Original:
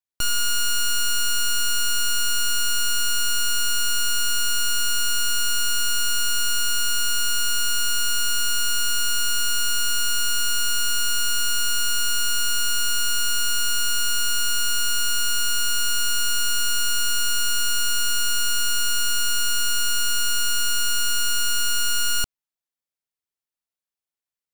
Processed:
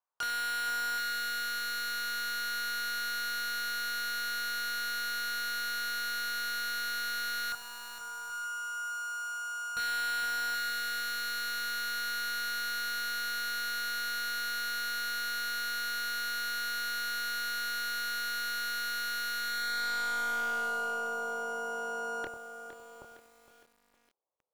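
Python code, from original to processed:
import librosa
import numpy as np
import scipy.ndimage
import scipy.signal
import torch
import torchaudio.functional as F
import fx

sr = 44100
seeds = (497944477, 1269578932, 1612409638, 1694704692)

y = fx.tone_stack(x, sr, knobs='5-5-5', at=(7.52, 9.77))
y = fx.clip_asym(y, sr, top_db=-32.0, bottom_db=-21.5)
y = fx.doubler(y, sr, ms=26.0, db=-6.5)
y = y + 10.0 ** (-16.0 / 20.0) * np.pad(y, (int(96 * sr / 1000.0), 0))[:len(y)]
y = fx.filter_sweep_bandpass(y, sr, from_hz=1500.0, to_hz=420.0, start_s=19.34, end_s=21.05, q=1.0)
y = fx.graphic_eq(y, sr, hz=(250, 500, 1000, 2000, 4000), db=(-9, 7, 10, -11, -10))
y = y + 10.0 ** (-14.0 / 20.0) * np.pad(y, (int(777 * sr / 1000.0), 0))[:len(y)]
y = 10.0 ** (-35.5 / 20.0) * (np.abs((y / 10.0 ** (-35.5 / 20.0) + 3.0) % 4.0 - 2.0) - 1.0)
y = fx.echo_crushed(y, sr, ms=461, feedback_pct=55, bits=10, wet_db=-10.5)
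y = y * 10.0 ** (6.5 / 20.0)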